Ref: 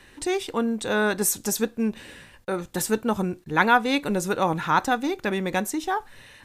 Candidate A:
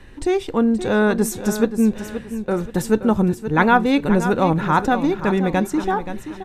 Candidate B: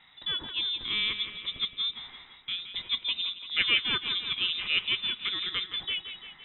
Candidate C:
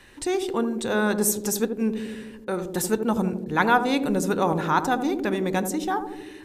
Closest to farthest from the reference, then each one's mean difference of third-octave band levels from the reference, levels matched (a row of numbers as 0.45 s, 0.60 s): C, A, B; 3.5 dB, 6.5 dB, 14.5 dB